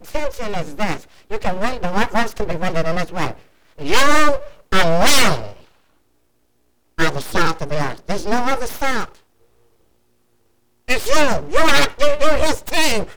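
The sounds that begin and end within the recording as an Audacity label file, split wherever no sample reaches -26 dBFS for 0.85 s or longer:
6.980000	9.050000	sound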